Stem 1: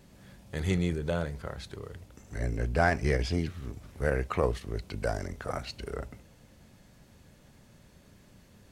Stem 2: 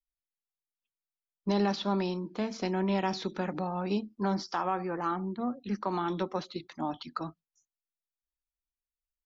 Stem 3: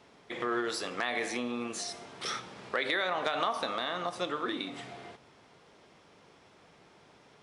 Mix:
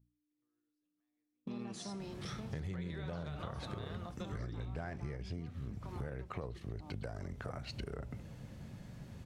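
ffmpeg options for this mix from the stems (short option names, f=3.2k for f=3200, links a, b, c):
-filter_complex "[0:a]highshelf=f=5.3k:g=-7.5,acompressor=threshold=-38dB:ratio=2,adelay=2000,volume=2.5dB[a];[1:a]aeval=exprs='val(0)+0.00158*(sin(2*PI*60*n/s)+sin(2*PI*2*60*n/s)/2+sin(2*PI*3*60*n/s)/3+sin(2*PI*4*60*n/s)/4+sin(2*PI*5*60*n/s)/5)':c=same,alimiter=limit=-24dB:level=0:latency=1,bandreject=f=60:t=h:w=6,bandreject=f=120:t=h:w=6,bandreject=f=180:t=h:w=6,bandreject=f=240:t=h:w=6,volume=-14.5dB,asplit=2[b][c];[2:a]bass=f=250:g=11,treble=f=4k:g=0,volume=-11dB[d];[c]apad=whole_len=327445[e];[d][e]sidechaingate=range=-54dB:threshold=-59dB:ratio=16:detection=peak[f];[a][b][f]amix=inputs=3:normalize=0,equalizer=f=130:w=0.96:g=8.5,acompressor=threshold=-39dB:ratio=6"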